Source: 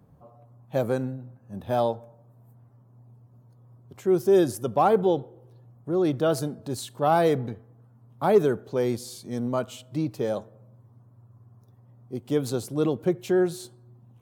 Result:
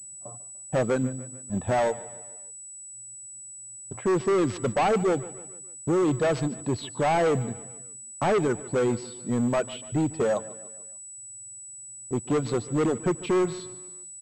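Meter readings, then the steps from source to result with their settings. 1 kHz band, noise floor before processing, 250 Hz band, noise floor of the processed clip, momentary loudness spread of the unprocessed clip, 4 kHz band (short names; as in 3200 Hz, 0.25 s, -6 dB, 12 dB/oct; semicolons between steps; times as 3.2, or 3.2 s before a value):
-1.0 dB, -56 dBFS, 0.0 dB, -43 dBFS, 17 LU, 0.0 dB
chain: gate with hold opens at -41 dBFS; low-pass opened by the level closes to 1900 Hz, open at -19.5 dBFS; reverb removal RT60 1.3 s; in parallel at +3 dB: compressor, threshold -31 dBFS, peak gain reduction 16.5 dB; on the sum: short-mantissa float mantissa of 4-bit; hard clip -21.5 dBFS, distortion -7 dB; on a send: feedback echo 0.147 s, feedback 49%, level -18 dB; on the sum: pulse-width modulation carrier 7900 Hz; gain +1.5 dB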